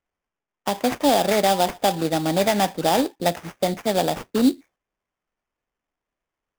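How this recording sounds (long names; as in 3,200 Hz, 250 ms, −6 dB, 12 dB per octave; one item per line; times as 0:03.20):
aliases and images of a low sample rate 4,200 Hz, jitter 20%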